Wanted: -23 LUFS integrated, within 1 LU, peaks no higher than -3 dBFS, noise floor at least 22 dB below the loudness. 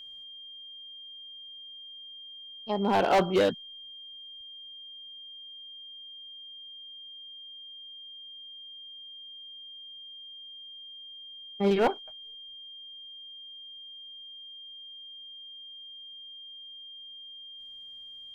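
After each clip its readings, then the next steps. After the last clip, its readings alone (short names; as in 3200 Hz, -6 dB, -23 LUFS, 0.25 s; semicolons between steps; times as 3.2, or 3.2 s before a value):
clipped 0.4%; flat tops at -18.0 dBFS; steady tone 3200 Hz; tone level -43 dBFS; loudness -35.5 LUFS; peak -18.0 dBFS; loudness target -23.0 LUFS
-> clip repair -18 dBFS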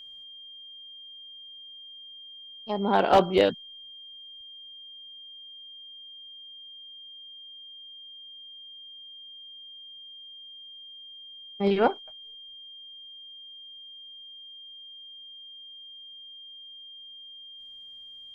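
clipped 0.0%; steady tone 3200 Hz; tone level -43 dBFS
-> notch 3200 Hz, Q 30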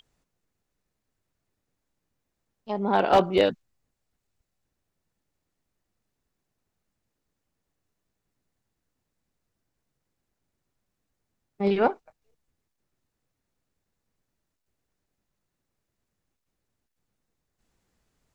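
steady tone none; loudness -24.0 LUFS; peak -8.5 dBFS; loudness target -23.0 LUFS
-> gain +1 dB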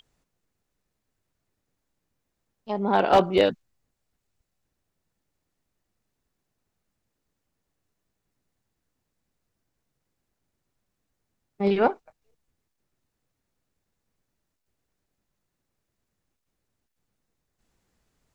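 loudness -23.0 LUFS; peak -7.5 dBFS; noise floor -81 dBFS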